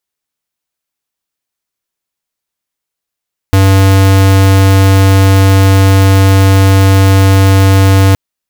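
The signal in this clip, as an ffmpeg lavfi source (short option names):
-f lavfi -i "aevalsrc='0.531*(2*lt(mod(96.7*t,1),0.5)-1)':d=4.62:s=44100"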